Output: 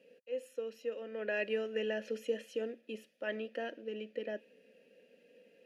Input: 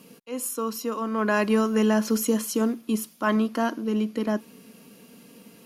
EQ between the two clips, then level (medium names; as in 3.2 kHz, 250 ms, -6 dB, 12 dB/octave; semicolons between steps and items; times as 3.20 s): dynamic bell 2.9 kHz, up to +6 dB, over -50 dBFS, Q 2.3; vowel filter e; 0.0 dB